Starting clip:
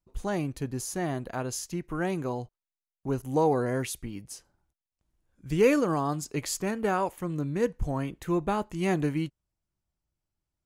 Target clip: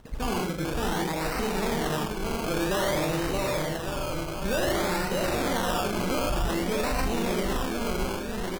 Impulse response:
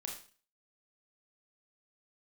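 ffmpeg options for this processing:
-filter_complex "[0:a]acompressor=mode=upward:threshold=0.0178:ratio=2.5,asplit=2[s0][s1];[1:a]atrim=start_sample=2205,adelay=106[s2];[s1][s2]afir=irnorm=-1:irlink=0,volume=1.33[s3];[s0][s3]amix=inputs=2:normalize=0,asoftclip=type=tanh:threshold=0.0631,asplit=2[s4][s5];[s5]adelay=48,volume=0.447[s6];[s4][s6]amix=inputs=2:normalize=0,aecho=1:1:770|1424|1981|2454|2856:0.631|0.398|0.251|0.158|0.1,acrusher=samples=23:mix=1:aa=0.000001:lfo=1:lforange=13.8:lforate=0.43,asetrate=54684,aresample=44100,asubboost=boost=2.5:cutoff=110,alimiter=limit=0.0944:level=0:latency=1:release=23,volume=1.19"

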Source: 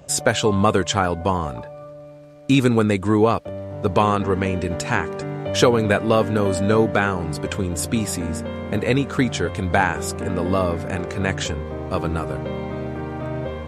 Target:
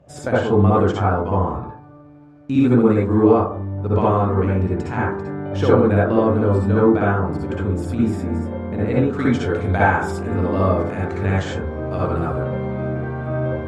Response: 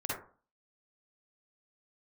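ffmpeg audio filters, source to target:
-filter_complex "[0:a]asetnsamples=n=441:p=0,asendcmd='9.13 lowpass f 2800',lowpass=f=1100:p=1[s0];[1:a]atrim=start_sample=2205,asetrate=36603,aresample=44100[s1];[s0][s1]afir=irnorm=-1:irlink=0,volume=0.631"

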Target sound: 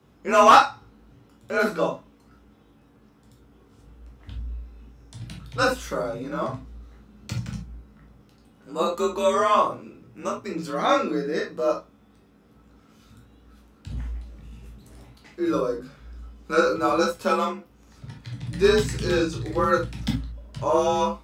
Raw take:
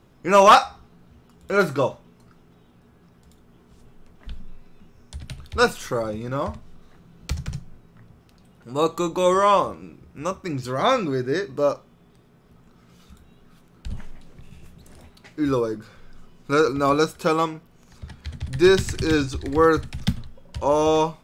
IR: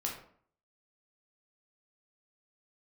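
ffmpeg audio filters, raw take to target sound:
-filter_complex "[1:a]atrim=start_sample=2205,atrim=end_sample=3528[s0];[0:a][s0]afir=irnorm=-1:irlink=0,afreqshift=42,volume=0.668"

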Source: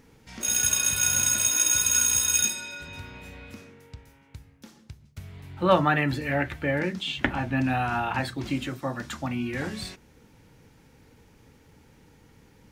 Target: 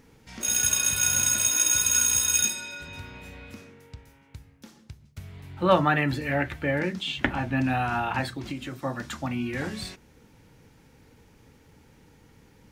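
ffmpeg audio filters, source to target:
-filter_complex "[0:a]asettb=1/sr,asplit=3[s0][s1][s2];[s0]atrim=end=8.264[s3];[s1]atrim=start=8.26:end=8.79,asetpts=PTS-STARTPTS,afade=t=in:d=0.004:c=qsin,afade=t=out:st=0.526:d=0.004:c=qsin,acompressor=threshold=0.0282:ratio=5[s4];[s2]atrim=start=8.786[s5];[s3][s4]acrossfade=d=0.004:c1=hsin:c2=qsin[s6];[s6][s5]acrossfade=d=0.004:c1=qsin:c2=hsin"

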